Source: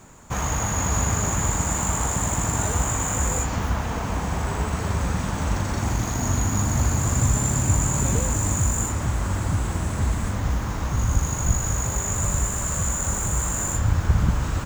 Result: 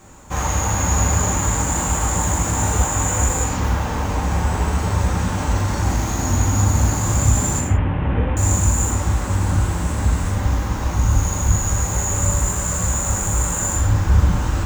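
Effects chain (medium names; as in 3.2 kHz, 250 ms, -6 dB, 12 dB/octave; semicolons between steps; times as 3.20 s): 7.59–8.37 s: CVSD coder 16 kbps; gated-style reverb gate 200 ms falling, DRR -1.5 dB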